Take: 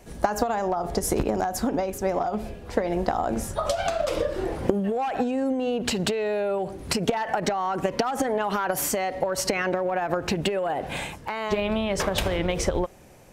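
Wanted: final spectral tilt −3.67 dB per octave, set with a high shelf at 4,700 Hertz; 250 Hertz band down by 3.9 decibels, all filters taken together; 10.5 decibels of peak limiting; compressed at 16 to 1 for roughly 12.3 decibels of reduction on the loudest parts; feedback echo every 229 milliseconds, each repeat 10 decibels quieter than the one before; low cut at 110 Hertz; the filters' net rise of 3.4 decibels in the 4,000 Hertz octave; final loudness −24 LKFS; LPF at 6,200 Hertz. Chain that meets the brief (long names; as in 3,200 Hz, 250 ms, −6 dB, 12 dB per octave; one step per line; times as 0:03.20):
high-pass filter 110 Hz
low-pass filter 6,200 Hz
parametric band 250 Hz −5 dB
parametric band 4,000 Hz +3 dB
high-shelf EQ 4,700 Hz +4.5 dB
downward compressor 16 to 1, threshold −31 dBFS
brickwall limiter −27.5 dBFS
repeating echo 229 ms, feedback 32%, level −10 dB
level +13 dB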